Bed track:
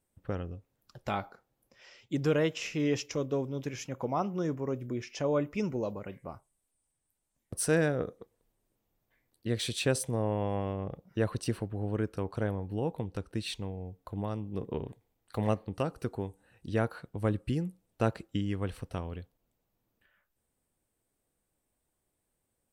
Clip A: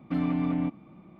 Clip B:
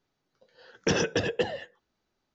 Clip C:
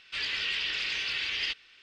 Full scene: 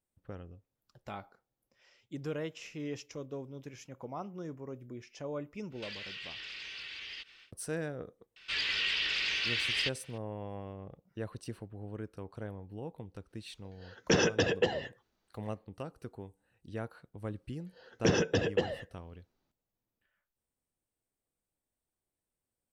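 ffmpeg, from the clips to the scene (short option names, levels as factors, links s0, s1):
-filter_complex "[3:a]asplit=2[s0][s1];[2:a]asplit=2[s2][s3];[0:a]volume=0.316[s4];[s0]acompressor=threshold=0.00891:ratio=6:attack=3.2:release=140:knee=1:detection=peak[s5];[s3]lowshelf=f=500:g=5.5[s6];[s5]atrim=end=1.82,asetpts=PTS-STARTPTS,volume=0.944,afade=t=in:d=0.1,afade=t=out:st=1.72:d=0.1,adelay=5700[s7];[s1]atrim=end=1.82,asetpts=PTS-STARTPTS,volume=0.944,afade=t=in:d=0.004:c=hsin,afade=t=out:st=1.816:d=0.004:c=hsin,adelay=8360[s8];[s2]atrim=end=2.34,asetpts=PTS-STARTPTS,volume=0.891,afade=t=in:d=0.1,afade=t=out:st=2.24:d=0.1,adelay=13230[s9];[s6]atrim=end=2.34,asetpts=PTS-STARTPTS,volume=0.562,afade=t=in:d=0.004:c=hsin,afade=t=out:st=2.336:d=0.004:c=hsin,adelay=17180[s10];[s4][s7][s8][s9][s10]amix=inputs=5:normalize=0"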